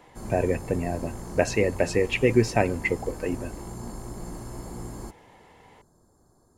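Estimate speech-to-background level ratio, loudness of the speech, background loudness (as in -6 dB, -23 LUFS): 13.0 dB, -26.0 LUFS, -39.0 LUFS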